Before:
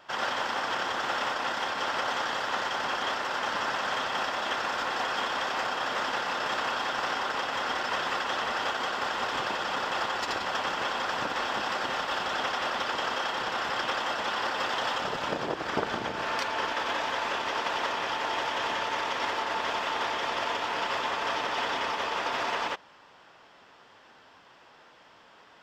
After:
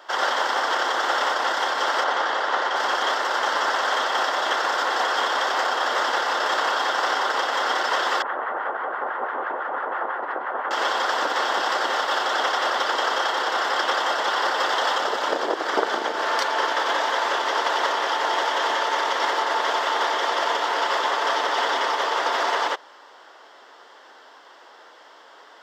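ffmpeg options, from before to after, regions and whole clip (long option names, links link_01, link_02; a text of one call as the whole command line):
ffmpeg -i in.wav -filter_complex "[0:a]asettb=1/sr,asplit=3[link_01][link_02][link_03];[link_01]atrim=end=2.044[link_04];[link_02]atrim=start=2.04:end=2.76,asetpts=PTS-STARTPTS,afade=type=in:duration=0.004:curve=qsin,afade=type=out:start_time=0.716:duration=0.004:curve=qsin,highpass=180,aemphasis=mode=reproduction:type=50fm[link_05];[link_03]atrim=start=2.756[link_06];[link_04][link_05]acrossfade=duration=0.004:curve1=hsin:curve2=qsin[link_07];[link_07][link_06]acrossfade=duration=0.004:curve1=qsin:curve2=hsin,asettb=1/sr,asplit=3[link_08][link_09][link_10];[link_08]atrim=end=8.224[link_11];[link_09]atrim=start=8.22:end=10.71,asetpts=PTS-STARTPTS,afade=type=in:duration=0.004:curve=qsin,afade=type=out:start_time=2.486:duration=0.004:curve=qsin,lowpass=frequency=1800:width=0.5412,lowpass=frequency=1800:width=1.3066,acrossover=split=990[link_12][link_13];[link_12]aeval=exprs='val(0)*(1-0.7/2+0.7/2*cos(2*PI*6*n/s))':channel_layout=same[link_14];[link_13]aeval=exprs='val(0)*(1-0.7/2-0.7/2*cos(2*PI*6*n/s))':channel_layout=same[link_15];[link_14][link_15]amix=inputs=2:normalize=0[link_16];[link_10]atrim=start=10.706[link_17];[link_11][link_16]acrossfade=duration=0.004:curve1=hsin:curve2=qsin[link_18];[link_18][link_17]acrossfade=duration=0.004:curve1=qsin:curve2=hsin,highpass=frequency=330:width=0.5412,highpass=frequency=330:width=1.3066,equalizer=frequency=2500:width_type=o:width=0.26:gain=-11,volume=8dB" out.wav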